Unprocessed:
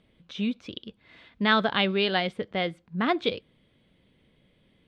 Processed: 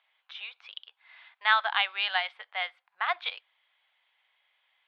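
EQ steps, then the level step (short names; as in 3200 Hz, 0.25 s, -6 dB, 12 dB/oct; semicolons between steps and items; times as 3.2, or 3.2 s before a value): elliptic high-pass 790 Hz, stop band 70 dB; air absorption 380 m; high shelf 2400 Hz +8 dB; +1.5 dB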